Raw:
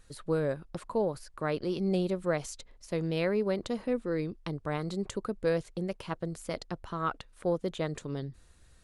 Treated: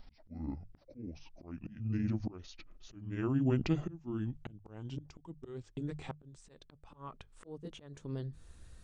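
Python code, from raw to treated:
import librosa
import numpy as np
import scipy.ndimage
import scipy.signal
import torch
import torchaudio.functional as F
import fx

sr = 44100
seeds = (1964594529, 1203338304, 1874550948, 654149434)

y = fx.pitch_glide(x, sr, semitones=-12.0, runs='ending unshifted')
y = fx.low_shelf(y, sr, hz=310.0, db=7.0)
y = fx.notch(y, sr, hz=2200.0, q=30.0)
y = fx.auto_swell(y, sr, attack_ms=745.0)
y = fx.hum_notches(y, sr, base_hz=50, count=3)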